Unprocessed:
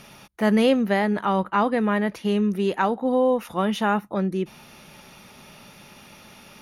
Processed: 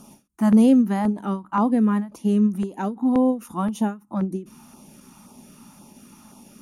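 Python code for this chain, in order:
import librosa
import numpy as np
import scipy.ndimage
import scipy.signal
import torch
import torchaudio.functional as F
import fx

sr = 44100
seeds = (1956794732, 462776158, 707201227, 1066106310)

y = fx.graphic_eq(x, sr, hz=(125, 250, 500, 1000, 2000, 4000, 8000), db=(-3, 12, -4, 6, -9, -8, 10))
y = fx.filter_lfo_notch(y, sr, shape='saw_down', hz=1.9, low_hz=340.0, high_hz=2100.0, q=1.2)
y = fx.end_taper(y, sr, db_per_s=200.0)
y = y * librosa.db_to_amplitude(-3.0)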